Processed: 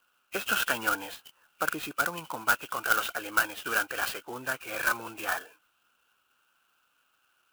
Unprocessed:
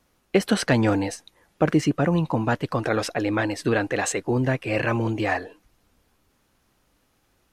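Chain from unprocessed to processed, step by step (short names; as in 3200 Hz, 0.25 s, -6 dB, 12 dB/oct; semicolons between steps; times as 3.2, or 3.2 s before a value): nonlinear frequency compression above 1900 Hz 1.5:1; double band-pass 2000 Hz, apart 0.94 oct; clock jitter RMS 0.04 ms; gain +8.5 dB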